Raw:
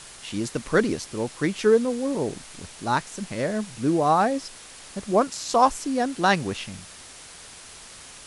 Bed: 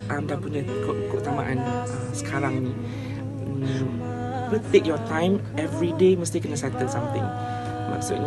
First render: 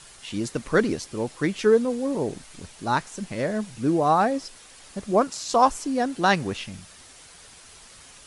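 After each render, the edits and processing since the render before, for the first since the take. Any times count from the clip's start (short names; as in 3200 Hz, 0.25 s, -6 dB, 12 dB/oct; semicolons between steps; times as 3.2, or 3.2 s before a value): denoiser 6 dB, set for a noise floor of -45 dBFS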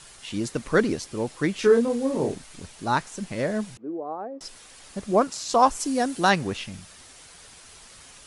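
1.59–2.35 doubler 30 ms -4.5 dB; 3.77–4.41 ladder band-pass 470 Hz, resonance 30%; 5.79–6.29 high shelf 4900 Hz -> 8000 Hz +11.5 dB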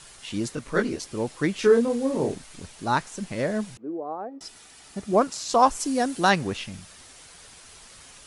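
0.55–1 detuned doubles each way 19 cents; 4.29–5.13 notch comb 540 Hz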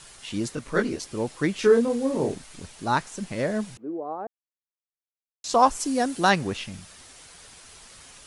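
4.27–5.44 mute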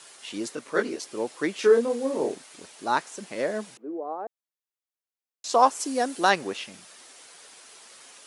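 Chebyshev high-pass 370 Hz, order 2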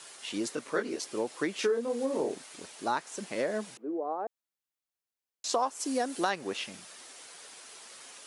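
compressor 4:1, threshold -27 dBFS, peak gain reduction 12.5 dB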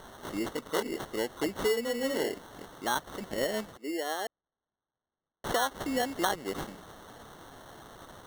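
sample-and-hold 18×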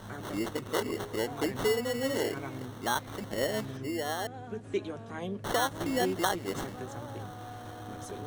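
add bed -15 dB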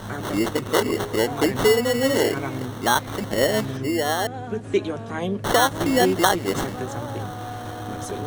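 gain +10.5 dB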